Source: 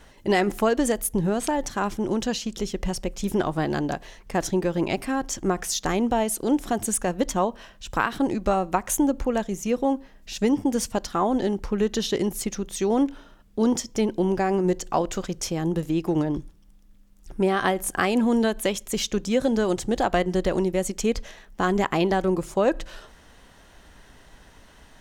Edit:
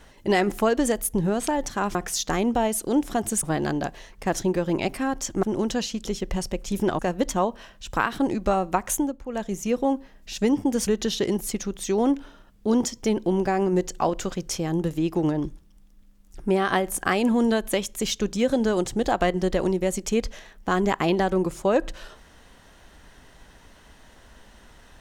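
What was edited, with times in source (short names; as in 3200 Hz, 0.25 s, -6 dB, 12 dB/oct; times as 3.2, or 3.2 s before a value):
1.95–3.51 swap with 5.51–6.99
8.91–9.51 dip -13.5 dB, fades 0.27 s
10.87–11.79 cut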